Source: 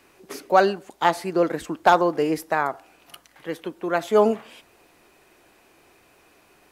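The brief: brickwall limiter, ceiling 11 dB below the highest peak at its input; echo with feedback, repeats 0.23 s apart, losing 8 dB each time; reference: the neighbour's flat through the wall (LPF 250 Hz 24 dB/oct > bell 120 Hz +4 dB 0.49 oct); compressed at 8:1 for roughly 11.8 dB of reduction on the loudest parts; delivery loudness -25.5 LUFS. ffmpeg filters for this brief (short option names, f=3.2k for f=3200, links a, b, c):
-af "acompressor=threshold=-23dB:ratio=8,alimiter=limit=-21dB:level=0:latency=1,lowpass=f=250:w=0.5412,lowpass=f=250:w=1.3066,equalizer=f=120:t=o:w=0.49:g=4,aecho=1:1:230|460|690|920|1150:0.398|0.159|0.0637|0.0255|0.0102,volume=18dB"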